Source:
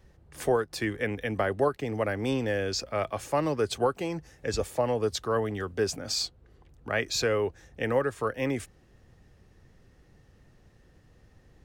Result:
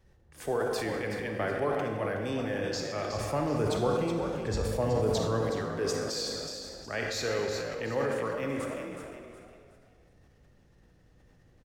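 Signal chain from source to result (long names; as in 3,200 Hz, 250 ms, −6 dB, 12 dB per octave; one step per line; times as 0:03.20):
0:03.10–0:05.42: low-shelf EQ 210 Hz +11.5 dB
echo with shifted repeats 370 ms, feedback 35%, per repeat +51 Hz, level −8.5 dB
convolution reverb RT60 2.0 s, pre-delay 29 ms, DRR 2.5 dB
level that may fall only so fast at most 21 dB per second
level −7 dB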